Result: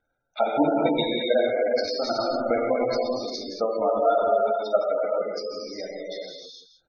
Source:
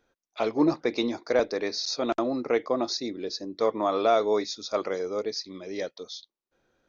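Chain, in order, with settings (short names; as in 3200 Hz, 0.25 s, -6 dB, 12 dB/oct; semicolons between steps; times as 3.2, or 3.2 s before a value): transient shaper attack +11 dB, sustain -12 dB; comb 1.4 ms, depth 54%; on a send: echo 0.165 s -11 dB; on the sum: non-linear reverb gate 0.48 s flat, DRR -4.5 dB; spectral gate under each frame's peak -20 dB strong; gain -7.5 dB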